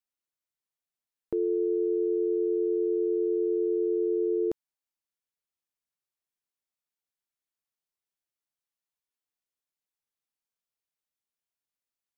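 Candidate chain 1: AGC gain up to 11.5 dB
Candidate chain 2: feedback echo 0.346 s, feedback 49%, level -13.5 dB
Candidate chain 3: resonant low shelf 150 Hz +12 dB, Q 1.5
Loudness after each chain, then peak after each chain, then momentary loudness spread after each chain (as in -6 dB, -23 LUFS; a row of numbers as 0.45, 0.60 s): -16.0, -27.0, -29.0 LUFS; -9.0, -19.5, -18.0 dBFS; 3, 14, 3 LU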